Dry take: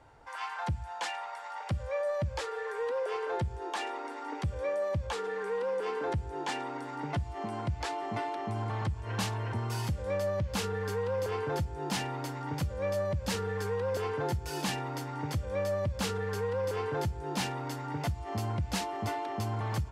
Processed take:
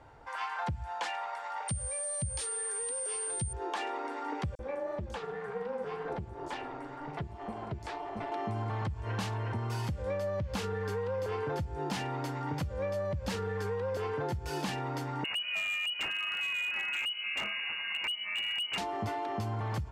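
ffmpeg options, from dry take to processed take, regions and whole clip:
-filter_complex "[0:a]asettb=1/sr,asplit=3[a][b][c];[a]atrim=end=1.684[d];[b]atrim=start=1.68:end=3.53,asetpts=PTS-STARTPTS,afade=t=in:d=0.004:c=qsin,afade=t=out:st=1.846:d=0.004:c=qsin,aeval=exprs='val(0)+0.0158*sin(2*PI*8900*n/s)':c=same,acrossover=split=220|3000[e][f][g];[f]acompressor=threshold=-48dB:ratio=4:attack=3.2:release=140:knee=2.83:detection=peak[h];[e][h][g]amix=inputs=3:normalize=0,highshelf=f=4.3k:g=7.5[i];[c]atrim=start=3.526[j];[d][i]acrossfade=d=0.004:c1=hsin:c2=qsin[k];[k][j]acrossfade=d=0.004:c1=qsin:c2=hsin,asettb=1/sr,asplit=3[l][m][n];[l]atrim=end=4.554[o];[m]atrim=start=4.55:end=8.32,asetpts=PTS-STARTPTS,afade=t=in:d=0.004:c=qsin,afade=t=out:st=3.766:d=0.004:c=qsin,flanger=delay=1.2:depth=9.6:regen=40:speed=2:shape=triangular,tremolo=f=280:d=0.621,acrossover=split=5700[p][q];[p]adelay=40[r];[r][q]amix=inputs=2:normalize=0,atrim=end_sample=166257[s];[n]atrim=start=8.316[t];[o][s]acrossfade=d=0.004:c1=hsin:c2=qsin[u];[u][t]acrossfade=d=0.004:c1=qsin:c2=hsin,asettb=1/sr,asplit=3[v][w][x];[v]atrim=end=15.244[y];[w]atrim=start=15.24:end=18.78,asetpts=PTS-STARTPTS,afade=t=in:d=0.004:c=qsin,afade=t=out:st=3.536:d=0.004:c=qsin,lowpass=f=2.6k:t=q:w=0.5098,lowpass=f=2.6k:t=q:w=0.6013,lowpass=f=2.6k:t=q:w=0.9,lowpass=f=2.6k:t=q:w=2.563,afreqshift=-3000,aeval=exprs='0.0473*(abs(mod(val(0)/0.0473+3,4)-2)-1)':c=same[z];[x]atrim=start=18.776[aa];[y][z]acrossfade=d=0.004:c1=hsin:c2=qsin[ab];[ab][aa]acrossfade=d=0.004:c1=qsin:c2=hsin,highshelf=f=5.1k:g=-7.5,acompressor=threshold=-34dB:ratio=6,volume=3dB"

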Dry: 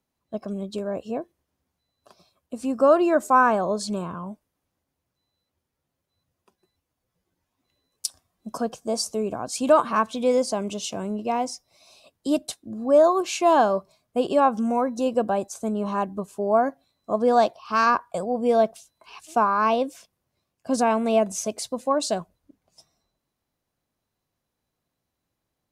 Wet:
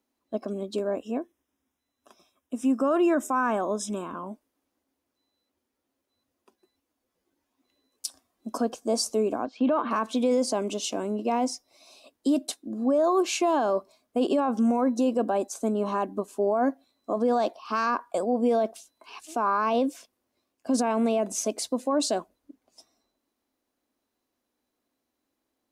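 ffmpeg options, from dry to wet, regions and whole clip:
-filter_complex "[0:a]asettb=1/sr,asplit=3[a][b][c];[a]atrim=end=0.954[d];[b]atrim=start=0.95:end=4.15,asetpts=PTS-STARTPTS,afade=t=in:d=0.004:c=qsin,afade=t=out:st=3.196:d=0.004:c=qsin,asuperstop=centerf=4400:order=8:qfactor=4.2,equalizer=f=520:w=0.85:g=-5.5[e];[c]atrim=start=4.146[f];[d][e]acrossfade=d=0.004:c1=hsin:c2=qsin[g];[g][f]acrossfade=d=0.004:c1=qsin:c2=hsin,asettb=1/sr,asplit=3[h][i][j];[h]atrim=end=9.454[k];[i]atrim=start=9.45:end=9.91,asetpts=PTS-STARTPTS,afade=t=in:d=0.004:c=qsin,afade=t=out:st=0.456:d=0.004:c=qsin,lowpass=f=3.3k:w=0.5412,lowpass=f=3.3k:w=1.3066,agate=range=-6dB:threshold=-42dB:ratio=16:release=100:detection=peak[l];[j]atrim=start=9.906[m];[k][l]acrossfade=d=0.004:c1=hsin:c2=qsin[n];[n][m]acrossfade=d=0.004:c1=qsin:c2=hsin,lowshelf=f=200:t=q:w=3:g=-8.5,alimiter=limit=-16dB:level=0:latency=1:release=23"

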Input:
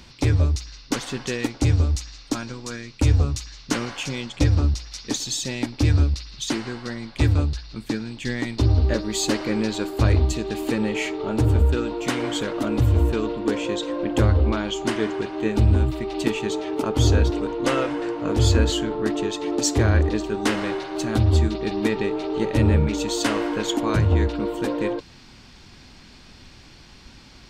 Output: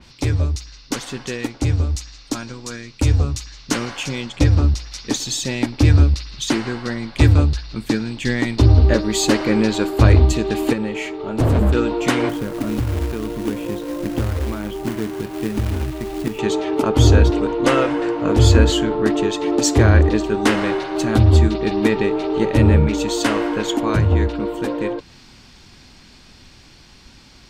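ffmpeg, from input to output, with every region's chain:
-filter_complex "[0:a]asettb=1/sr,asplit=3[a][b][c];[a]atrim=end=10.734[d];[b]atrim=start=10.73:end=11.75,asetpts=PTS-STARTPTS,afade=t=in:d=0.004:c=qsin,afade=t=out:st=1.016:d=0.004:c=qsin,agate=range=-7dB:threshold=-20dB:ratio=16:release=100:detection=peak,aeval=exprs='0.15*(abs(mod(val(0)/0.15+3,4)-2)-1)':c=same[e];[c]atrim=start=11.746[f];[d][e]acrossfade=d=0.004:c1=hsin:c2=qsin[g];[g][f]acrossfade=d=0.004:c1=qsin:c2=hsin,asettb=1/sr,asplit=3[h][i][j];[h]atrim=end=12.294[k];[i]atrim=start=12.29:end=16.39,asetpts=PTS-STARTPTS,afade=t=in:d=0.004:c=qsin,afade=t=out:st=4.096:d=0.004:c=qsin,acrossover=split=250|2200[l][m][n];[l]acompressor=threshold=-29dB:ratio=4[o];[m]acompressor=threshold=-37dB:ratio=4[p];[n]acompressor=threshold=-48dB:ratio=4[q];[o][p][q]amix=inputs=3:normalize=0,aemphasis=mode=reproduction:type=75fm,acrusher=bits=3:mode=log:mix=0:aa=0.000001[r];[j]atrim=start=16.386[s];[k][r]acrossfade=d=0.004:c1=hsin:c2=qsin[t];[t][s]acrossfade=d=0.004:c1=qsin:c2=hsin,highshelf=f=5.8k:g=5,dynaudnorm=f=280:g=31:m=11.5dB,adynamicequalizer=threshold=0.00794:dfrequency=3400:dqfactor=0.7:tfrequency=3400:tqfactor=0.7:attack=5:release=100:ratio=0.375:range=3:mode=cutabove:tftype=highshelf"

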